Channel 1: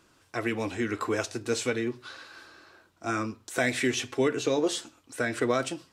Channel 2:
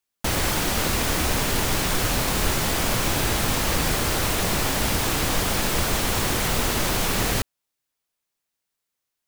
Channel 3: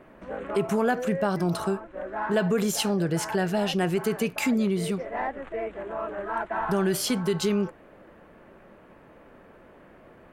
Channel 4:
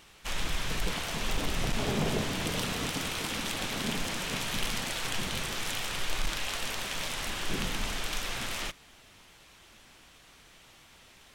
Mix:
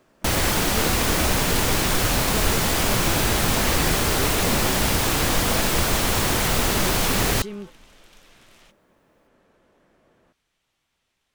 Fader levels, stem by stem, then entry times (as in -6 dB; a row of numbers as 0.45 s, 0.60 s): -6.5 dB, +2.0 dB, -10.0 dB, -19.0 dB; 0.00 s, 0.00 s, 0.00 s, 0.00 s